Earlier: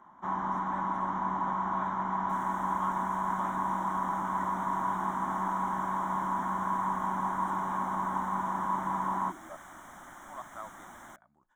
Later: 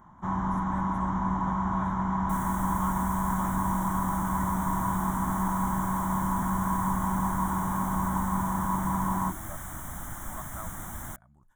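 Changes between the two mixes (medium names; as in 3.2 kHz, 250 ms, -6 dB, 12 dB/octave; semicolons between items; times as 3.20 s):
second sound +4.5 dB; master: remove three-band isolator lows -21 dB, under 250 Hz, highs -18 dB, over 6.3 kHz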